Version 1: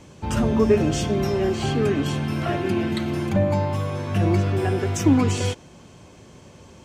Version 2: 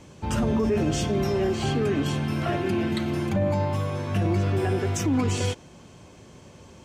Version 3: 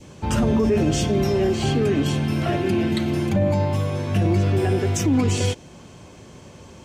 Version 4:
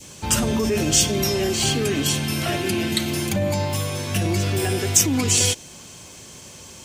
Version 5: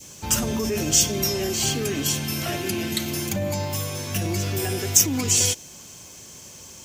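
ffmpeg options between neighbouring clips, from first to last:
-af "alimiter=limit=-14.5dB:level=0:latency=1:release=15,volume=-1.5dB"
-af "adynamicequalizer=threshold=0.00562:dfrequency=1200:dqfactor=1.2:tfrequency=1200:tqfactor=1.2:attack=5:release=100:ratio=0.375:range=2.5:mode=cutabove:tftype=bell,volume=4.5dB"
-af "crystalizer=i=7:c=0,volume=-3.5dB"
-af "aexciter=amount=2.1:drive=1.8:freq=5.4k,volume=-4dB"

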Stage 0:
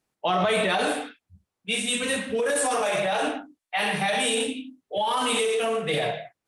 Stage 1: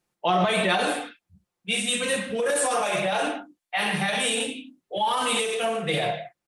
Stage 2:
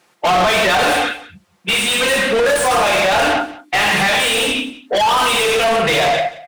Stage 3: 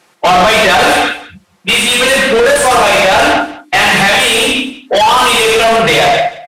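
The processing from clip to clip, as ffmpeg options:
-af "aecho=1:1:5.7:0.44"
-filter_complex "[0:a]asplit=2[a][b];[b]highpass=f=720:p=1,volume=31dB,asoftclip=type=tanh:threshold=-9.5dB[c];[a][c]amix=inputs=2:normalize=0,lowpass=f=3.4k:p=1,volume=-6dB,aecho=1:1:180:0.126,volume=2dB"
-af "aresample=32000,aresample=44100,volume=6dB"

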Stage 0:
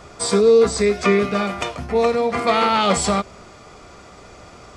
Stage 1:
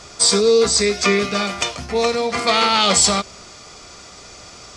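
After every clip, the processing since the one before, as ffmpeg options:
-af "equalizer=f=5.6k:w=0.58:g=14.5,volume=-2dB"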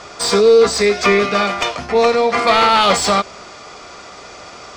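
-filter_complex "[0:a]asplit=2[a][b];[b]highpass=f=720:p=1,volume=15dB,asoftclip=type=tanh:threshold=-1dB[c];[a][c]amix=inputs=2:normalize=0,lowpass=f=1.2k:p=1,volume=-6dB,volume=2dB"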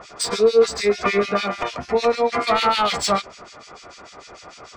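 -filter_complex "[0:a]acrossover=split=1900[a][b];[a]aeval=exprs='val(0)*(1-1/2+1/2*cos(2*PI*6.7*n/s))':c=same[c];[b]aeval=exprs='val(0)*(1-1/2-1/2*cos(2*PI*6.7*n/s))':c=same[d];[c][d]amix=inputs=2:normalize=0,volume=-1.5dB"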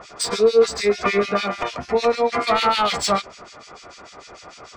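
-af anull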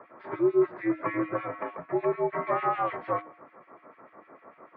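-af "bandreject=f=396.6:t=h:w=4,bandreject=f=793.2:t=h:w=4,bandreject=f=1.1898k:t=h:w=4,bandreject=f=1.5864k:t=h:w=4,bandreject=f=1.983k:t=h:w=4,bandreject=f=2.3796k:t=h:w=4,bandreject=f=2.7762k:t=h:w=4,bandreject=f=3.1728k:t=h:w=4,bandreject=f=3.5694k:t=h:w=4,bandreject=f=3.966k:t=h:w=4,bandreject=f=4.3626k:t=h:w=4,bandreject=f=4.7592k:t=h:w=4,bandreject=f=5.1558k:t=h:w=4,bandreject=f=5.5524k:t=h:w=4,bandreject=f=5.949k:t=h:w=4,bandreject=f=6.3456k:t=h:w=4,bandreject=f=6.7422k:t=h:w=4,bandreject=f=7.1388k:t=h:w=4,bandreject=f=7.5354k:t=h:w=4,bandreject=f=7.932k:t=h:w=4,bandreject=f=8.3286k:t=h:w=4,bandreject=f=8.7252k:t=h:w=4,bandreject=f=9.1218k:t=h:w=4,bandreject=f=9.5184k:t=h:w=4,bandreject=f=9.915k:t=h:w=4,bandreject=f=10.3116k:t=h:w=4,bandreject=f=10.7082k:t=h:w=4,bandreject=f=11.1048k:t=h:w=4,bandreject=f=11.5014k:t=h:w=4,bandreject=f=11.898k:t=h:w=4,bandreject=f=12.2946k:t=h:w=4,bandreject=f=12.6912k:t=h:w=4,highpass=f=250:t=q:w=0.5412,highpass=f=250:t=q:w=1.307,lowpass=f=2.1k:t=q:w=0.5176,lowpass=f=2.1k:t=q:w=0.7071,lowpass=f=2.1k:t=q:w=1.932,afreqshift=-81,volume=-8dB"

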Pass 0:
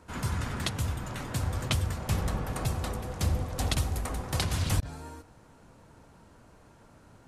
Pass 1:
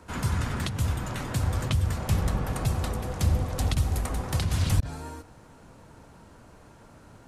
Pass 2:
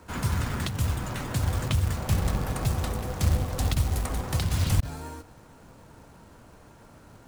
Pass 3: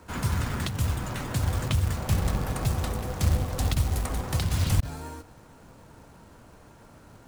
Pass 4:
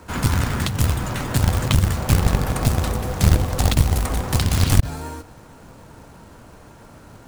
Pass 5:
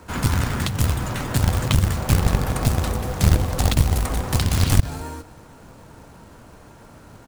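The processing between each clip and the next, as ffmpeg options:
-filter_complex "[0:a]acrossover=split=220[a][b];[b]acompressor=threshold=-36dB:ratio=6[c];[a][c]amix=inputs=2:normalize=0,volume=4.5dB"
-af "acrusher=bits=4:mode=log:mix=0:aa=0.000001"
-af anull
-af "aeval=exprs='0.282*(cos(1*acos(clip(val(0)/0.282,-1,1)))-cos(1*PI/2))+0.1*(cos(6*acos(clip(val(0)/0.282,-1,1)))-cos(6*PI/2))+0.0631*(cos(8*acos(clip(val(0)/0.282,-1,1)))-cos(8*PI/2))':c=same,volume=7dB"
-af "aecho=1:1:218:0.0794,volume=-1dB"

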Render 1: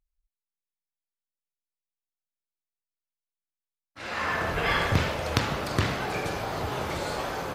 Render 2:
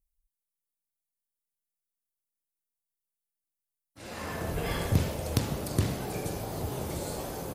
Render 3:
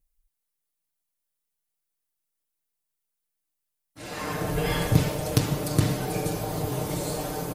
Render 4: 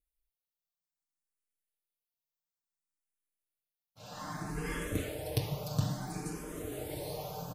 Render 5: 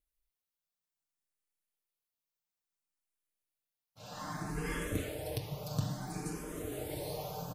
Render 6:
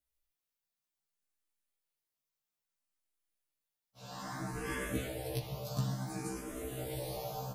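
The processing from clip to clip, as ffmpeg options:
-af "firequalizer=gain_entry='entry(190,0);entry(1300,-14);entry(9600,7)':delay=0.05:min_phase=1"
-af "aecho=1:1:6.6:0.65,volume=4dB"
-filter_complex "[0:a]asplit=2[a][b];[b]afreqshift=0.59[c];[a][c]amix=inputs=2:normalize=1,volume=-7.5dB"
-af "alimiter=limit=-21dB:level=0:latency=1:release=487"
-af "afftfilt=real='re*1.73*eq(mod(b,3),0)':imag='im*1.73*eq(mod(b,3),0)':win_size=2048:overlap=0.75,volume=2.5dB"

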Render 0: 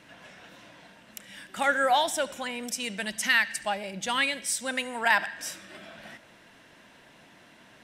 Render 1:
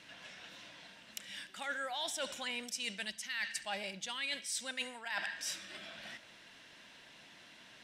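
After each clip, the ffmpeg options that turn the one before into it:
-af "equalizer=f=4.1k:w=0.54:g=11,areverse,acompressor=threshold=-27dB:ratio=20,areverse,volume=-8dB"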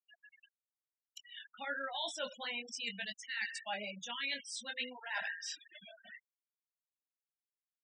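-filter_complex "[0:a]flanger=delay=18:depth=4.3:speed=0.56,afftfilt=real='re*gte(hypot(re,im),0.00891)':imag='im*gte(hypot(re,im),0.00891)':win_size=1024:overlap=0.75,acrossover=split=6800[a][b];[b]acompressor=threshold=-58dB:ratio=4:attack=1:release=60[c];[a][c]amix=inputs=2:normalize=0,volume=3dB"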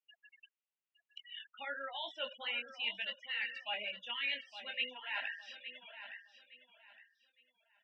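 -af "highpass=f=300:w=0.5412,highpass=f=300:w=1.3066,equalizer=f=300:t=q:w=4:g=-5,equalizer=f=430:t=q:w=4:g=-6,equalizer=f=700:t=q:w=4:g=-6,equalizer=f=1.1k:t=q:w=4:g=-3,equalizer=f=1.6k:t=q:w=4:g=-5,equalizer=f=2.8k:t=q:w=4:g=7,lowpass=f=3k:w=0.5412,lowpass=f=3k:w=1.3066,aecho=1:1:863|1726|2589:0.266|0.0718|0.0194,volume=1dB"

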